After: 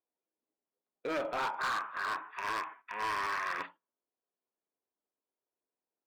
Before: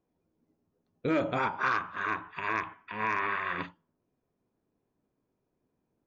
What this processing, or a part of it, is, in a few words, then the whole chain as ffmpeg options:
walkie-talkie: -af "highpass=520,lowpass=2500,highshelf=frequency=3500:gain=3,asoftclip=type=hard:threshold=-30dB,agate=range=-11dB:threshold=-53dB:ratio=16:detection=peak"

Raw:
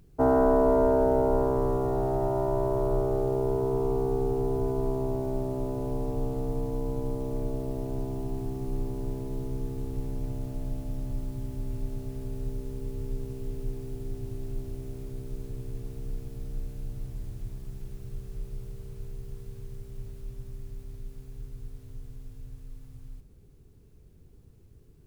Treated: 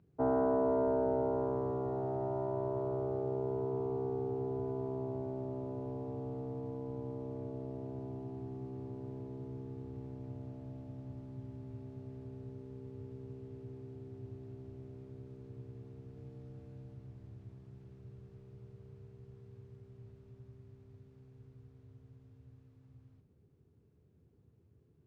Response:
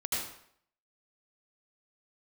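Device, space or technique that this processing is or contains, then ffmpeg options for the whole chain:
through cloth: -filter_complex "[0:a]highpass=frequency=80:width=0.5412,highpass=frequency=80:width=1.3066,asettb=1/sr,asplit=3[link_01][link_02][link_03];[link_01]atrim=end=16.144[link_04];[link_02]atrim=start=16.14:end=16.94,asetpts=PTS-STARTPTS,afade=type=in:duration=0.004:curve=qsin,afade=type=out:start_time=0.796:duration=0.004:curve=qsin,asplit=2[link_05][link_06];[link_06]adelay=22,volume=-5dB[link_07];[link_05][link_07]amix=inputs=2:normalize=0,atrim=end_sample=35280[link_08];[link_03]atrim=start=16.936[link_09];[link_04][link_08]acrossfade=duration=0.004:curve1=hsin:curve2=qsin[link_10];[link_10][link_09]acrossfade=duration=0.004:curve1=qsin:curve2=hsin,lowpass=6700,highshelf=frequency=3500:gain=-16,volume=-8dB"

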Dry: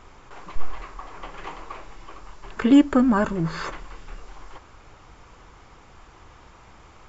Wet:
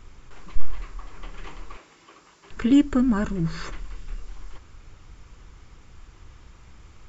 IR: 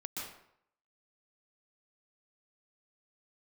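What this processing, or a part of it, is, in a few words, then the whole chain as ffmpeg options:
smiley-face EQ: -filter_complex "[0:a]asettb=1/sr,asplit=3[link_01][link_02][link_03];[link_01]atrim=end=1.774[link_04];[link_02]atrim=start=1.77:end=2.51,asetpts=PTS-STARTPTS,afade=type=in:duration=0.004:curve=qsin,afade=type=out:start_time=0.736:duration=0.004:curve=qsin,highpass=260[link_05];[link_03]atrim=start=2.506[link_06];[link_04][link_05]acrossfade=duration=0.004:curve1=hsin:curve2=qsin[link_07];[link_07][link_06]acrossfade=duration=0.004:curve1=qsin:curve2=hsin,lowshelf=frequency=140:gain=9,equalizer=frequency=780:width_type=o:width=1.5:gain=-8,highshelf=frequency=5800:gain=4.5,volume=-3dB"

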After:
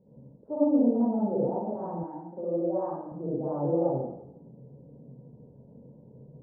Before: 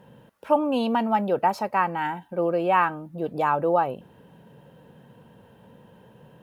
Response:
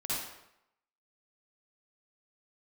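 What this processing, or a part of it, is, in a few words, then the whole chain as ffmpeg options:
next room: -filter_complex "[0:a]lowpass=frequency=530:width=0.5412,lowpass=frequency=530:width=1.3066[link_01];[1:a]atrim=start_sample=2205[link_02];[link_01][link_02]afir=irnorm=-1:irlink=0,asettb=1/sr,asplit=3[link_03][link_04][link_05];[link_03]atrim=end=2.034[link_06];[link_04]atrim=start=2.03:end=3.12,asetpts=PTS-STARTPTS,afade=type=in:duration=0.004:curve=qsin,afade=type=out:start_time=1.086:duration=0.004:curve=qsin,highpass=frequency=320:poles=1[link_07];[link_05]atrim=start=3.116[link_08];[link_06][link_07]acrossfade=duration=0.004:curve1=hsin:curve2=qsin[link_09];[link_09][link_08]acrossfade=duration=0.004:curve1=qsin:curve2=hsin,volume=-3.5dB"

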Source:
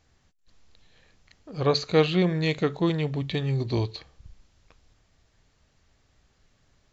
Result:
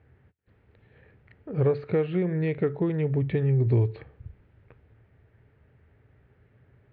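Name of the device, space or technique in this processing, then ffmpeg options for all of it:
bass amplifier: -af "acompressor=threshold=-30dB:ratio=4,highpass=64,equalizer=frequency=82:width_type=q:width=4:gain=6,equalizer=frequency=120:width_type=q:width=4:gain=10,equalizer=frequency=420:width_type=q:width=4:gain=7,equalizer=frequency=710:width_type=q:width=4:gain=-4,equalizer=frequency=1100:width_type=q:width=4:gain=-8,lowpass=frequency=2100:width=0.5412,lowpass=frequency=2100:width=1.3066,volume=4.5dB"

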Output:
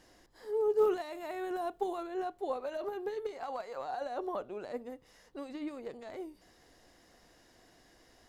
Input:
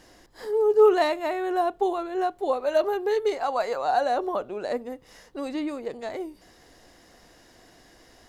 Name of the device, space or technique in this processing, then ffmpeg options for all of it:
de-esser from a sidechain: -filter_complex "[0:a]asplit=2[link_01][link_02];[link_02]highpass=frequency=4800:width=0.5412,highpass=frequency=4800:width=1.3066,apad=whole_len=365517[link_03];[link_01][link_03]sidechaincompress=threshold=-55dB:ratio=4:attack=0.72:release=27,asettb=1/sr,asplit=3[link_04][link_05][link_06];[link_04]atrim=end=0.774[link_07];[link_05]atrim=start=0.77:end=2.07,asetpts=PTS-STARTPTS,afade=type=in:duration=0.004:curve=qsin,afade=type=out:start_time=1.296:duration=0.004:curve=qsin,highshelf=frequency=6500:gain=8.5[link_08];[link_06]atrim=start=2.066[link_09];[link_07][link_08]acrossfade=duration=0.004:curve1=hsin:curve2=qsin[link_10];[link_10][link_09]acrossfade=duration=0.004:curve1=qsin:curve2=hsin,volume=-8dB"

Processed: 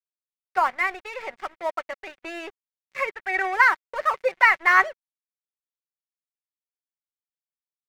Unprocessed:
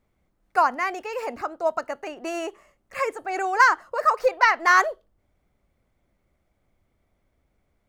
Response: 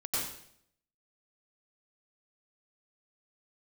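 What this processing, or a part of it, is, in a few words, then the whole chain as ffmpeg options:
pocket radio on a weak battery: -filter_complex "[0:a]adynamicequalizer=threshold=0.01:dfrequency=2700:dqfactor=2.8:tfrequency=2700:tqfactor=2.8:attack=5:release=100:ratio=0.375:range=1.5:mode=boostabove:tftype=bell,highpass=260,lowpass=3700,aeval=exprs='sgn(val(0))*max(abs(val(0))-0.0141,0)':channel_layout=same,equalizer=frequency=2100:width_type=o:width=0.54:gain=9,aecho=1:1:5.3:0.37,asettb=1/sr,asplit=3[link_01][link_02][link_03];[link_01]atrim=end=3.104[link_04];[link_02]atrim=start=3.1:end=3.53,asetpts=PTS-STARTPTS,afade=type=in:duration=0.004:curve=qsin,afade=type=out:start_time=0.426:duration=0.004:curve=qsin,equalizer=frequency=1800:width_type=o:width=0.45:gain=10.5[link_05];[link_03]atrim=start=3.526[link_06];[link_04][link_05]acrossfade=duration=0.004:curve1=hsin:curve2=qsin[link_07];[link_07][link_06]acrossfade=duration=0.004:curve1=qsin:curve2=hsin,volume=-2.5dB"

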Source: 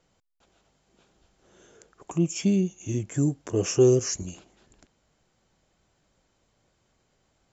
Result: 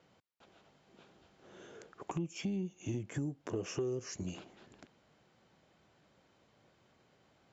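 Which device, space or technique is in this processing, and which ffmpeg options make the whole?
AM radio: -af "highpass=110,lowpass=4100,acompressor=threshold=-37dB:ratio=6,asoftclip=type=tanh:threshold=-29dB,volume=3dB"

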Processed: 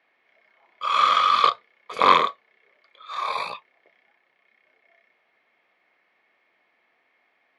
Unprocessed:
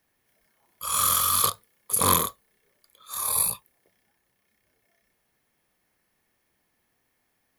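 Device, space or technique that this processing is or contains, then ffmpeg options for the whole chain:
phone earpiece: -af "highpass=380,equalizer=frequency=670:width_type=q:width=4:gain=5,equalizer=frequency=1200:width_type=q:width=4:gain=4,equalizer=frequency=2200:width_type=q:width=4:gain=9,lowpass=frequency=3700:width=0.5412,lowpass=frequency=3700:width=1.3066,volume=6dB"

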